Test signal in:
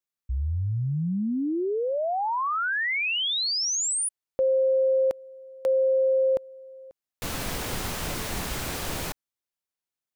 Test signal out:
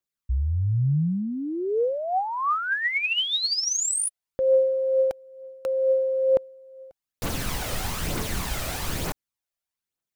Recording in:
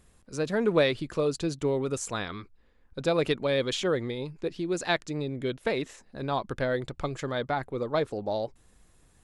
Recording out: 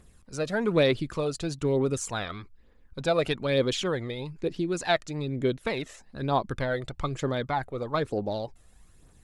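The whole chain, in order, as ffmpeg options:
-af "aphaser=in_gain=1:out_gain=1:delay=1.7:decay=0.46:speed=1.1:type=triangular"

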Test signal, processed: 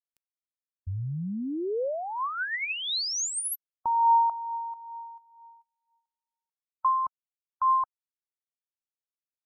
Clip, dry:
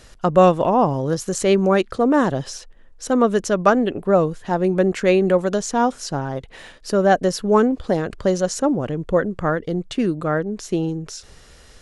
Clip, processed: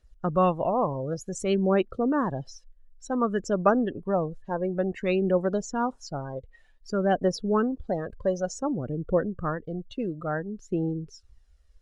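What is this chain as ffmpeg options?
-af "aphaser=in_gain=1:out_gain=1:delay=2:decay=0.37:speed=0.55:type=triangular,afftdn=nr=21:nf=-28,volume=-8.5dB"

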